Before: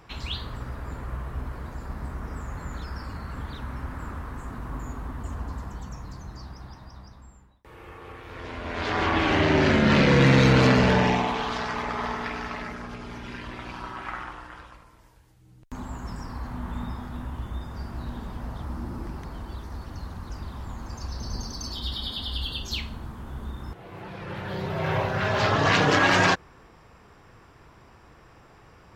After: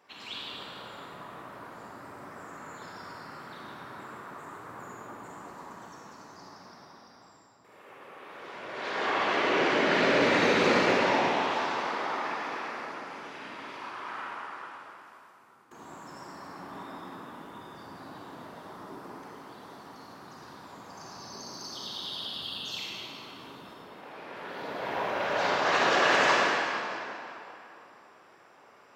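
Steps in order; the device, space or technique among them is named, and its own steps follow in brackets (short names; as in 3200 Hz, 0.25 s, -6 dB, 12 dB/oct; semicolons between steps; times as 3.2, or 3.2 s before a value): whispering ghost (whisperiser; HPF 360 Hz 12 dB/oct; reverb RT60 3.0 s, pre-delay 39 ms, DRR -5 dB); gain -8 dB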